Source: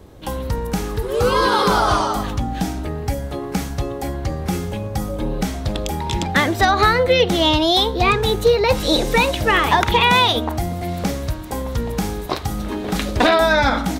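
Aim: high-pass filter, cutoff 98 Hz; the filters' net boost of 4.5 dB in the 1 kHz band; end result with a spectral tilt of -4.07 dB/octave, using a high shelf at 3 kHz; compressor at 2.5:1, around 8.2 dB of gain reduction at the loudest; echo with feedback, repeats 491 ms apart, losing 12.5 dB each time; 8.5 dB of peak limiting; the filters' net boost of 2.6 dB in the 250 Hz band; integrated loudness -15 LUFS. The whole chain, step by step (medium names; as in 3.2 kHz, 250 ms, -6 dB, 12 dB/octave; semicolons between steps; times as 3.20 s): high-pass 98 Hz; peaking EQ 250 Hz +3.5 dB; peaking EQ 1 kHz +4.5 dB; treble shelf 3 kHz +7 dB; compression 2.5:1, threshold -20 dBFS; peak limiter -11.5 dBFS; feedback delay 491 ms, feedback 24%, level -12.5 dB; trim +7.5 dB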